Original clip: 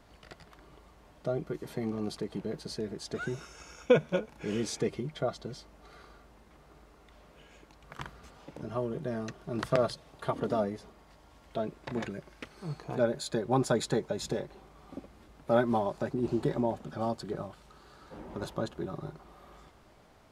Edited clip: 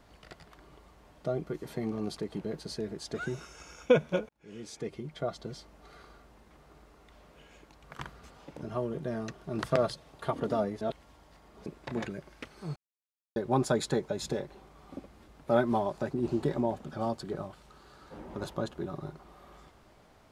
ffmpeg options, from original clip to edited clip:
ffmpeg -i in.wav -filter_complex "[0:a]asplit=6[link_01][link_02][link_03][link_04][link_05][link_06];[link_01]atrim=end=4.29,asetpts=PTS-STARTPTS,afade=type=out:start_time=4.286:duration=0.004:curve=hsin[link_07];[link_02]atrim=start=4.29:end=10.812,asetpts=PTS-STARTPTS,afade=type=in:duration=1.21[link_08];[link_03]atrim=start=10.808:end=11.662,asetpts=PTS-STARTPTS,areverse[link_09];[link_04]atrim=start=11.658:end=12.76,asetpts=PTS-STARTPTS,afade=type=out:start_time=1.098:duration=0.004:curve=hsin[link_10];[link_05]atrim=start=12.76:end=13.36,asetpts=PTS-STARTPTS,volume=0[link_11];[link_06]atrim=start=13.36,asetpts=PTS-STARTPTS,afade=type=in:duration=0.004:curve=hsin[link_12];[link_07][link_08]concat=n=2:v=0:a=1[link_13];[link_13][link_09]acrossfade=duration=0.004:curve1=hsin:curve2=hsin[link_14];[link_10][link_11][link_12]concat=n=3:v=0:a=1[link_15];[link_14][link_15]acrossfade=duration=0.004:curve1=hsin:curve2=hsin" out.wav

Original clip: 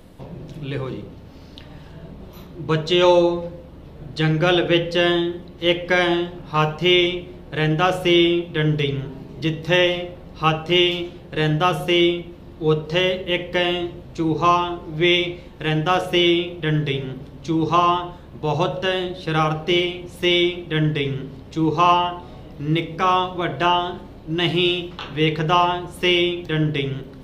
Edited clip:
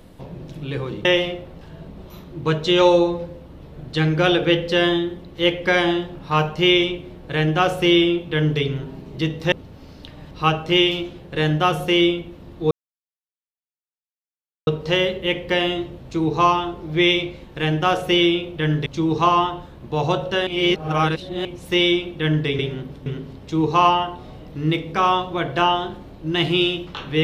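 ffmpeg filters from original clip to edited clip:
ffmpeg -i in.wav -filter_complex "[0:a]asplit=11[link_01][link_02][link_03][link_04][link_05][link_06][link_07][link_08][link_09][link_10][link_11];[link_01]atrim=end=1.052[link_12];[link_02]atrim=start=9.748:end=10.312[link_13];[link_03]atrim=start=1.838:end=9.752[link_14];[link_04]atrim=start=1.048:end=1.842[link_15];[link_05]atrim=start=10.308:end=12.71,asetpts=PTS-STARTPTS,afade=type=out:start_time=2.398:duration=0.004:curve=hsin,apad=pad_dur=1.96[link_16];[link_06]atrim=start=12.71:end=16.902,asetpts=PTS-STARTPTS,afade=type=in:duration=0.004:curve=hsin[link_17];[link_07]atrim=start=17.368:end=18.982[link_18];[link_08]atrim=start=18.978:end=19.962,asetpts=PTS-STARTPTS,areverse[link_19];[link_09]atrim=start=19.958:end=21.102[link_20];[link_10]atrim=start=16.898:end=17.372[link_21];[link_11]atrim=start=21.098[link_22];[link_12][link_13]acrossfade=duration=0.004:curve1=hsin:curve2=hsin[link_23];[link_23][link_14]acrossfade=duration=0.004:curve1=hsin:curve2=hsin[link_24];[link_24][link_15]acrossfade=duration=0.004:curve1=hsin:curve2=hsin[link_25];[link_16][link_17]concat=n=2:v=0:a=1[link_26];[link_25][link_26]acrossfade=duration=0.004:curve1=hsin:curve2=hsin[link_27];[link_27][link_18]acrossfade=duration=0.004:curve1=hsin:curve2=hsin[link_28];[link_28][link_19]acrossfade=duration=0.004:curve1=hsin:curve2=hsin[link_29];[link_29][link_20]acrossfade=duration=0.004:curve1=hsin:curve2=hsin[link_30];[link_30][link_21]acrossfade=duration=0.004:curve1=hsin:curve2=hsin[link_31];[link_31][link_22]acrossfade=duration=0.004:curve1=hsin:curve2=hsin" out.wav

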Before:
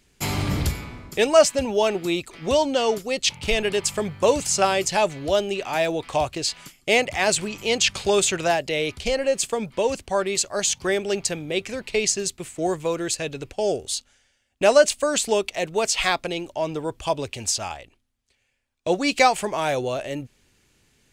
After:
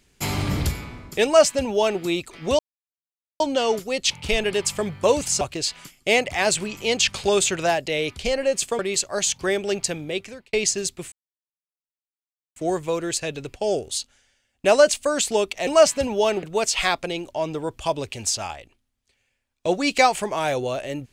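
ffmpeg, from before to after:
ffmpeg -i in.wav -filter_complex "[0:a]asplit=8[link_01][link_02][link_03][link_04][link_05][link_06][link_07][link_08];[link_01]atrim=end=2.59,asetpts=PTS-STARTPTS,afade=type=out:start_time=2.586:duration=0.004:curve=hsin,apad=pad_dur=0.81[link_09];[link_02]atrim=start=2.59:end=4.602,asetpts=PTS-STARTPTS,afade=type=in:duration=0.004:curve=hsin[link_10];[link_03]atrim=start=6.218:end=9.602[link_11];[link_04]atrim=start=10.198:end=11.94,asetpts=PTS-STARTPTS,afade=type=out:start_time=1.242:duration=0.5[link_12];[link_05]atrim=start=11.94:end=12.53,asetpts=PTS-STARTPTS,afade=type=in:duration=0.004:curve=hsin,afade=type=out:start_time=0.586:duration=0.004:curve=hsin,apad=pad_dur=1.44[link_13];[link_06]atrim=start=12.53:end=15.642,asetpts=PTS-STARTPTS,afade=type=in:duration=0.004:curve=hsin[link_14];[link_07]atrim=start=1.248:end=2.012[link_15];[link_08]atrim=start=15.638[link_16];[link_09][link_10]concat=n=2:v=0:a=1[link_17];[link_17][link_11]acrossfade=duration=0.004:curve1=hsin:curve2=hsin[link_18];[link_12][link_13][link_14]concat=n=3:v=0:a=1[link_19];[link_18][link_19]acrossfade=duration=0.004:curve1=hsin:curve2=hsin[link_20];[link_20][link_15]acrossfade=duration=0.004:curve1=hsin:curve2=hsin[link_21];[link_21][link_16]acrossfade=duration=0.004:curve1=hsin:curve2=hsin" out.wav

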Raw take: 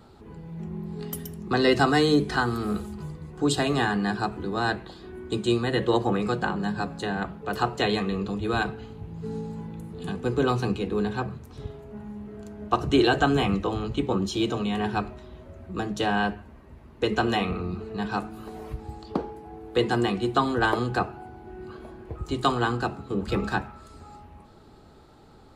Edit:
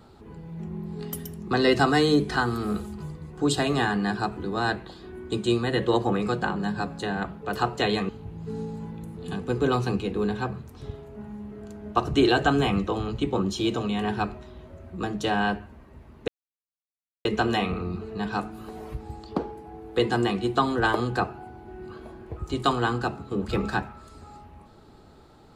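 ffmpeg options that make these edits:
ffmpeg -i in.wav -filter_complex "[0:a]asplit=3[link_01][link_02][link_03];[link_01]atrim=end=8.092[link_04];[link_02]atrim=start=8.848:end=17.04,asetpts=PTS-STARTPTS,afade=type=out:start_time=8.188:duration=0.004:curve=hsin,apad=pad_dur=0.97[link_05];[link_03]atrim=start=17.04,asetpts=PTS-STARTPTS,afade=type=in:duration=0.004:curve=hsin[link_06];[link_05][link_06]concat=n=2:v=0:a=1[link_07];[link_04][link_07]acrossfade=duration=0.004:curve1=hsin:curve2=hsin" out.wav

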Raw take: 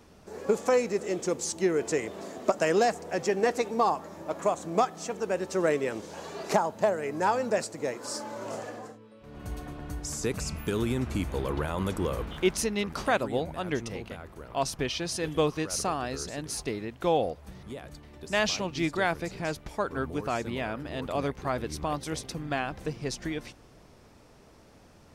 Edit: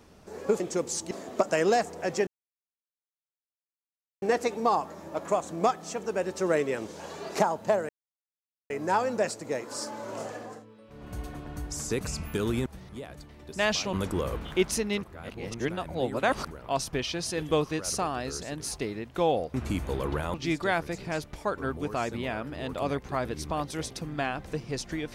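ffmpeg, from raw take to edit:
ffmpeg -i in.wav -filter_complex "[0:a]asplit=11[link_01][link_02][link_03][link_04][link_05][link_06][link_07][link_08][link_09][link_10][link_11];[link_01]atrim=end=0.602[link_12];[link_02]atrim=start=1.118:end=1.632[link_13];[link_03]atrim=start=2.198:end=3.36,asetpts=PTS-STARTPTS,afade=type=out:start_time=1.158:duration=0.004:curve=hsin,apad=pad_dur=1.95[link_14];[link_04]atrim=start=3.36:end=7.03,asetpts=PTS-STARTPTS,afade=type=in:duration=0.004:curve=hsin,afade=type=out:start_time=3.666:duration=0.004:curve=hsin,apad=pad_dur=0.81[link_15];[link_05]atrim=start=7.03:end=10.992,asetpts=PTS-STARTPTS,afade=type=in:duration=0.004:curve=hsin[link_16];[link_06]atrim=start=17.398:end=18.672[link_17];[link_07]atrim=start=11.788:end=12.892[link_18];[link_08]atrim=start=12.888:end=14.372,asetpts=PTS-STARTPTS,areverse[link_19];[link_09]atrim=start=14.368:end=17.402[link_20];[link_10]atrim=start=10.988:end=11.792[link_21];[link_11]atrim=start=18.668[link_22];[link_12][link_13]acrossfade=duration=0.004:curve1=hsin:curve2=hsin[link_23];[link_14][link_15][link_16]concat=n=3:v=0:a=1[link_24];[link_23][link_24]acrossfade=duration=0.004:curve1=hsin:curve2=hsin[link_25];[link_25][link_17]acrossfade=duration=0.004:curve1=hsin:curve2=hsin[link_26];[link_26][link_18]acrossfade=duration=0.004:curve1=hsin:curve2=hsin[link_27];[link_27][link_19]acrossfade=duration=0.004:curve1=hsin:curve2=hsin[link_28];[link_28][link_20]acrossfade=duration=0.004:curve1=hsin:curve2=hsin[link_29];[link_29][link_21]acrossfade=duration=0.004:curve1=hsin:curve2=hsin[link_30];[link_30][link_22]acrossfade=duration=0.004:curve1=hsin:curve2=hsin" out.wav

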